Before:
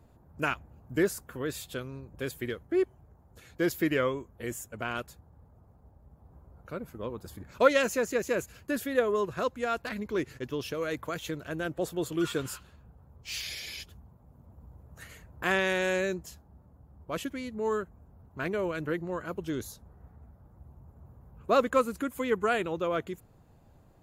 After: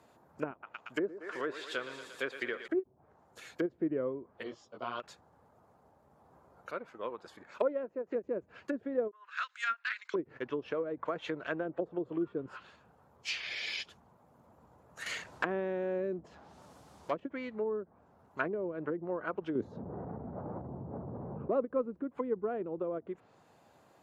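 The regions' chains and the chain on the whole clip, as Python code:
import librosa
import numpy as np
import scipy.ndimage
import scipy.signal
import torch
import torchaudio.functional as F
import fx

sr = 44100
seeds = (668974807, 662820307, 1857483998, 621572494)

y = fx.chain(x, sr, fx.low_shelf(hz=230.0, db=-12.0),
    fx.echo_thinned(ms=116, feedback_pct=75, hz=230.0, wet_db=-12.0), at=(0.51, 2.68))
y = fx.chain(y, sr, fx.cheby1_lowpass(hz=4900.0, order=4),
    fx.band_shelf(hz=2000.0, db=-15.5, octaves=1.1),
    fx.detune_double(cents=16), at=(4.43, 5.0))
y = fx.chain(y, sr, fx.lowpass(hz=1800.0, slope=6),
    fx.low_shelf(hz=290.0, db=-10.5), at=(6.71, 8.12))
y = fx.chain(y, sr, fx.ellip_bandpass(low_hz=1400.0, high_hz=8600.0, order=3, stop_db=60),
    fx.overload_stage(gain_db=28.0), at=(9.11, 10.14))
y = fx.chain(y, sr, fx.law_mismatch(coded='mu'),
    fx.high_shelf(hz=2700.0, db=9.5), at=(15.06, 17.2))
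y = fx.chain(y, sr, fx.highpass(hz=91.0, slope=12),
    fx.clip_hard(threshold_db=-17.0),
    fx.env_flatten(amount_pct=70), at=(19.55, 21.56))
y = fx.env_lowpass_down(y, sr, base_hz=360.0, full_db=-28.0)
y = fx.weighting(y, sr, curve='A')
y = fx.end_taper(y, sr, db_per_s=570.0)
y = F.gain(torch.from_numpy(y), 4.5).numpy()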